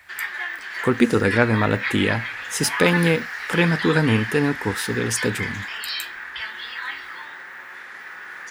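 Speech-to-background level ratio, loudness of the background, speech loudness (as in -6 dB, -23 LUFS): 7.0 dB, -28.5 LUFS, -21.5 LUFS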